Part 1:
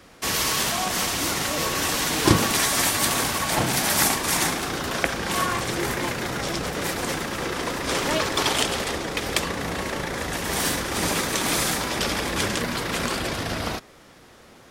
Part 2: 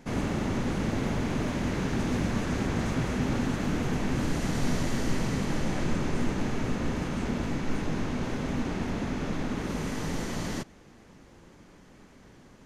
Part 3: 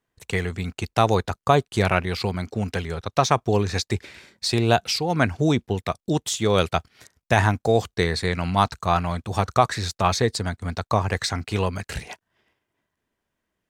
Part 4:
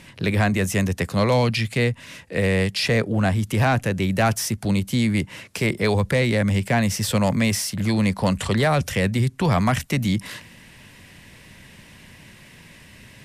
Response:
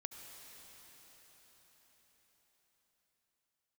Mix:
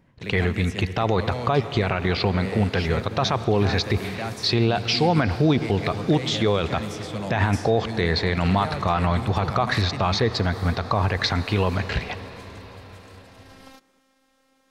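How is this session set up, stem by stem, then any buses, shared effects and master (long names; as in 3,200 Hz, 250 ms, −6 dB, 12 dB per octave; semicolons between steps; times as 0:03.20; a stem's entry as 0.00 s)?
0:03.52 −23 dB → 0:04.13 −13 dB, 0.00 s, no send, phases set to zero 266 Hz; automatic ducking −12 dB, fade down 0.25 s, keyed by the fourth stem
−13.5 dB, 1.35 s, no send, high-pass filter 220 Hz
+3.0 dB, 0.00 s, send −3 dB, low-pass filter 4,400 Hz 24 dB per octave; brickwall limiter −11 dBFS, peak gain reduction 9 dB
−12.0 dB, 0.00 s, no send, low-pass that shuts in the quiet parts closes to 910 Hz, open at −16 dBFS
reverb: on, RT60 5.6 s, pre-delay 63 ms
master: brickwall limiter −9.5 dBFS, peak gain reduction 5.5 dB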